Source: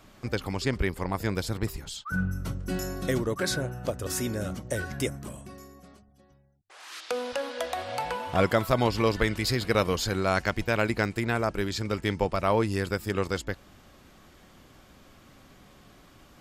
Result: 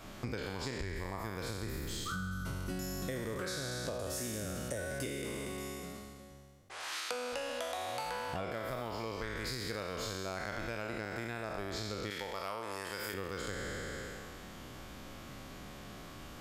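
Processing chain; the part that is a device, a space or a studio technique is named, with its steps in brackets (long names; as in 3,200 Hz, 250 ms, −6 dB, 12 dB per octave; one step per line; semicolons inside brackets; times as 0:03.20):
peak hold with a decay on every bin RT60 1.77 s
serial compression, leveller first (downward compressor 2.5 to 1, threshold −25 dBFS, peak gain reduction 7.5 dB; downward compressor 6 to 1, threshold −39 dBFS, peak gain reduction 16.5 dB)
0:12.10–0:13.14: spectral tilt +2.5 dB per octave
level +2.5 dB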